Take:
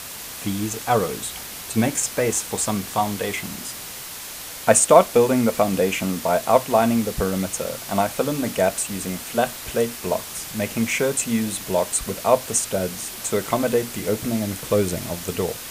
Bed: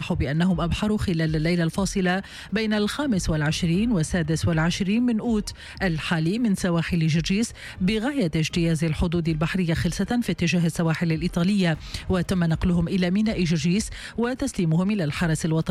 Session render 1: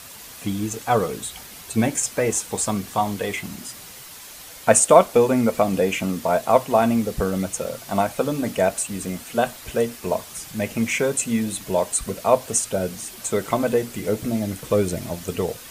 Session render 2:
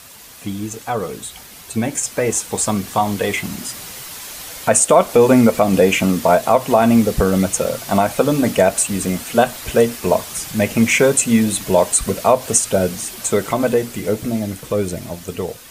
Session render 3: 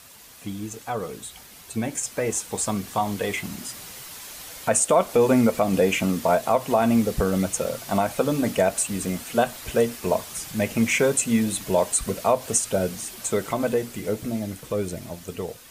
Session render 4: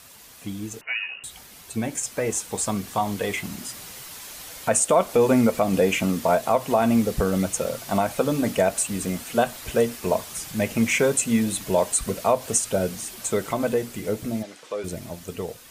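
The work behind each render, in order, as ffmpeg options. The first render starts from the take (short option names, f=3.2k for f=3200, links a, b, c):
-af "afftdn=nr=7:nf=-35"
-af "alimiter=limit=-10.5dB:level=0:latency=1:release=122,dynaudnorm=f=610:g=9:m=11dB"
-af "volume=-7dB"
-filter_complex "[0:a]asettb=1/sr,asplit=3[a][b][c];[a]atrim=end=0.814[d];[b]atrim=start=0.81:end=1.24,asetpts=PTS-STARTPTS,afade=t=in:d=0.004:c=qsin,afade=t=out:st=0.426:d=0.004:c=qsin,lowpass=f=2.6k:t=q:w=0.5098,lowpass=f=2.6k:t=q:w=0.6013,lowpass=f=2.6k:t=q:w=0.9,lowpass=f=2.6k:t=q:w=2.563,afreqshift=-3000[e];[c]atrim=start=1.236[f];[d][e]acrossfade=d=0.004:c1=hsin:c2=qsin[g];[g][f]acrossfade=d=0.004:c1=qsin:c2=hsin,asplit=3[h][i][j];[h]afade=t=out:st=14.42:d=0.02[k];[i]highpass=490,lowpass=6.3k,afade=t=in:st=14.42:d=0.02,afade=t=out:st=14.83:d=0.02[l];[j]afade=t=in:st=14.83:d=0.02[m];[k][l][m]amix=inputs=3:normalize=0"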